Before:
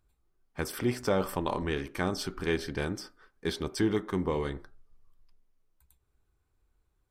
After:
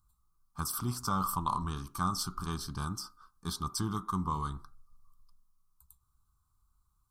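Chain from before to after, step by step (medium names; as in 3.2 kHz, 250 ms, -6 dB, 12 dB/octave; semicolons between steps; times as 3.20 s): FFT filter 180 Hz 0 dB, 530 Hz -23 dB, 1.2 kHz +11 dB, 1.9 kHz -26 dB, 4.1 kHz 0 dB, 10 kHz +7 dB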